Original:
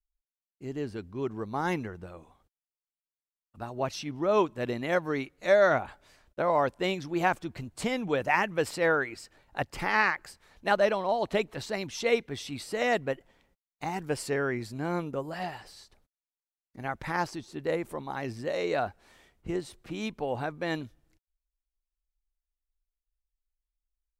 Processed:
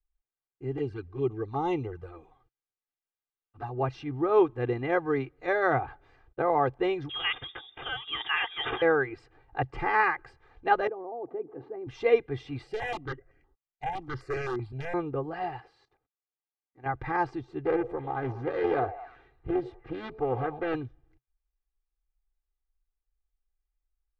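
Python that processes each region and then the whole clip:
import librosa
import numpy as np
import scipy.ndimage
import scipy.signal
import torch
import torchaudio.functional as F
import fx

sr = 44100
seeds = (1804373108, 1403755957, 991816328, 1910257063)

y = fx.chain(x, sr, fx.high_shelf(hz=2400.0, db=9.5),
    fx.env_flanger(rest_ms=11.1, full_db=-29.0), at=(0.77, 3.69))
y = fx.chain(y, sr, fx.transient(attack_db=-2, sustain_db=10),
    fx.resample_bad(factor=6, down='none', up='filtered'),
    fx.freq_invert(carrier_hz=3600), at=(7.09, 8.82))
y = fx.chain(y, sr, fx.ladder_bandpass(hz=370.0, resonance_pct=25),
    fx.env_flatten(amount_pct=50), at=(10.87, 11.87))
y = fx.chain(y, sr, fx.notch(hz=480.0, q=7.7),
    fx.overflow_wrap(gain_db=23.5),
    fx.phaser_held(hz=7.8, low_hz=300.0, high_hz=3600.0), at=(12.67, 14.94))
y = fx.chain(y, sr, fx.highpass(hz=280.0, slope=6),
    fx.level_steps(step_db=14), at=(15.6, 16.86))
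y = fx.chain(y, sr, fx.air_absorb(metres=57.0),
    fx.echo_stepped(ms=100, hz=550.0, octaves=0.7, feedback_pct=70, wet_db=-11),
    fx.doppler_dist(depth_ms=0.51), at=(17.64, 20.75))
y = scipy.signal.sosfilt(scipy.signal.butter(2, 1800.0, 'lowpass', fs=sr, output='sos'), y)
y = fx.peak_eq(y, sr, hz=130.0, db=8.0, octaves=0.3)
y = y + 0.84 * np.pad(y, (int(2.5 * sr / 1000.0), 0))[:len(y)]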